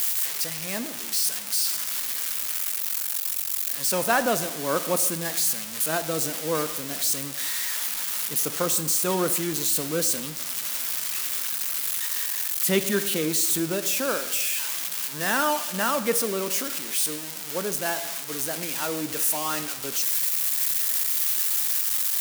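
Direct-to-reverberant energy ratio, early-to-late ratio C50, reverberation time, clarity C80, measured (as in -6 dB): 10.5 dB, 13.5 dB, 1.1 s, 15.0 dB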